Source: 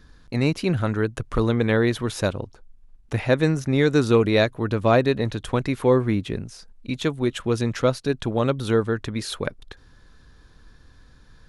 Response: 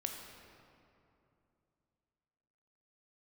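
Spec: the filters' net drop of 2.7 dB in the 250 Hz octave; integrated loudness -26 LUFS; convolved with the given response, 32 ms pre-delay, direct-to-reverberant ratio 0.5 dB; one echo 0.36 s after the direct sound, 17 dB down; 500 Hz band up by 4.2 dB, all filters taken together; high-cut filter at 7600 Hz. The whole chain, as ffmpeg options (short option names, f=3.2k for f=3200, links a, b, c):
-filter_complex "[0:a]lowpass=7.6k,equalizer=f=250:t=o:g=-6,equalizer=f=500:t=o:g=6.5,aecho=1:1:360:0.141,asplit=2[a][b];[1:a]atrim=start_sample=2205,adelay=32[c];[b][c]afir=irnorm=-1:irlink=0,volume=-0.5dB[d];[a][d]amix=inputs=2:normalize=0,volume=-8dB"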